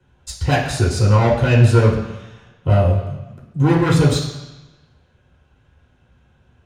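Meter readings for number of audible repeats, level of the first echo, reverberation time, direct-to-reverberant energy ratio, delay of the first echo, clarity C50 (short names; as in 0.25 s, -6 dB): none, none, 1.1 s, -5.0 dB, none, 5.0 dB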